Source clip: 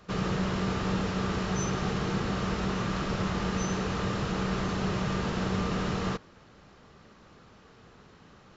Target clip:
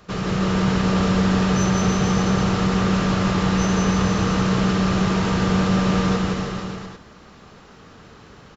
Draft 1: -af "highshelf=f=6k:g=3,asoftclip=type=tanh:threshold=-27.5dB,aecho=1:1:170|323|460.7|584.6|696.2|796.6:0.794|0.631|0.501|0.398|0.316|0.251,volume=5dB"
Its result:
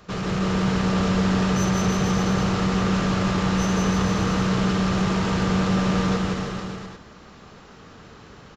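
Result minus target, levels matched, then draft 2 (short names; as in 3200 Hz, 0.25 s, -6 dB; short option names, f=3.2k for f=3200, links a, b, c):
soft clip: distortion +11 dB
-af "highshelf=f=6k:g=3,asoftclip=type=tanh:threshold=-19.5dB,aecho=1:1:170|323|460.7|584.6|696.2|796.6:0.794|0.631|0.501|0.398|0.316|0.251,volume=5dB"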